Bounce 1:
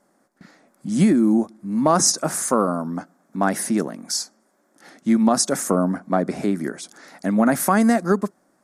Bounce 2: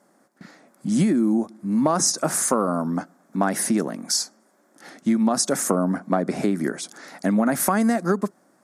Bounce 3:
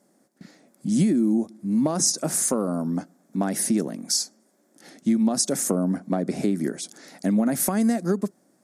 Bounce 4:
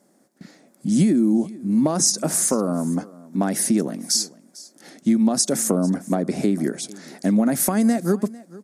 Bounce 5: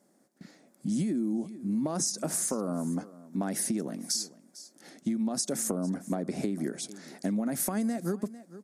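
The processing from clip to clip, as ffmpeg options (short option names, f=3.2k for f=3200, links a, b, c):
-af "highpass=94,acompressor=threshold=-20dB:ratio=5,volume=3dB"
-af "equalizer=f=1.2k:w=0.83:g=-11"
-af "aecho=1:1:450:0.0944,volume=3dB"
-af "acompressor=threshold=-20dB:ratio=6,volume=-6.5dB"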